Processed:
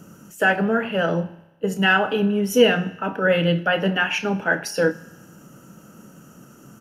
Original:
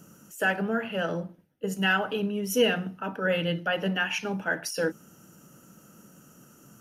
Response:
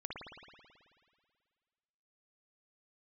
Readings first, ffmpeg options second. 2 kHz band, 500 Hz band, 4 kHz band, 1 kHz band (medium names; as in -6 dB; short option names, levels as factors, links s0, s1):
+7.0 dB, +8.0 dB, +5.5 dB, +8.0 dB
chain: -filter_complex "[0:a]highshelf=f=4200:g=-7.5,asplit=2[s0][s1];[s1]adelay=29,volume=0.251[s2];[s0][s2]amix=inputs=2:normalize=0,asplit=2[s3][s4];[1:a]atrim=start_sample=2205,asetrate=79380,aresample=44100[s5];[s4][s5]afir=irnorm=-1:irlink=0,volume=0.316[s6];[s3][s6]amix=inputs=2:normalize=0,volume=2.24"